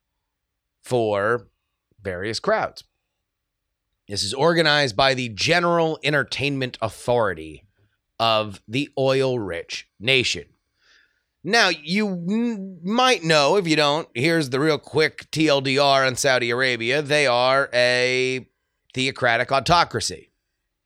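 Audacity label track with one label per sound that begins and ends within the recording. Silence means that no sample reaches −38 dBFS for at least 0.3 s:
0.860000	1.420000	sound
2.050000	2.810000	sound
4.090000	7.560000	sound
8.200000	10.430000	sound
11.450000	18.430000	sound
18.900000	20.220000	sound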